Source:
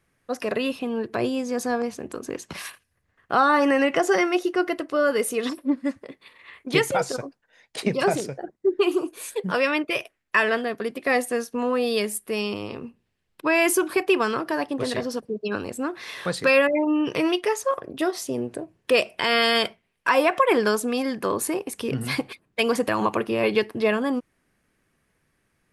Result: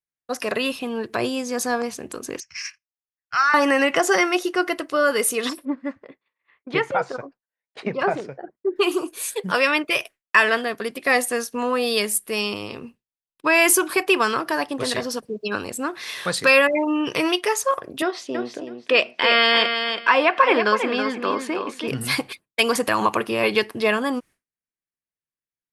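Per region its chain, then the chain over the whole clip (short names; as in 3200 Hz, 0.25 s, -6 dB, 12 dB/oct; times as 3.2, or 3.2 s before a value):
2.4–3.54 EQ curve 110 Hz 0 dB, 230 Hz -24 dB, 400 Hz -27 dB, 780 Hz -17 dB, 1500 Hz +1 dB, 2400 Hz +9 dB, 3700 Hz -15 dB, 5400 Hz +14 dB, 7700 Hz -9 dB, 11000 Hz -27 dB + upward expander, over -43 dBFS
5.65–8.76 LPF 1500 Hz + tilt +1.5 dB/oct
18.02–21.88 Chebyshev band-pass 230–3200 Hz + feedback echo 0.325 s, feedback 20%, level -7 dB
whole clip: dynamic EQ 1100 Hz, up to +4 dB, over -35 dBFS, Q 1; expander -39 dBFS; high shelf 2200 Hz +9.5 dB; gain -1 dB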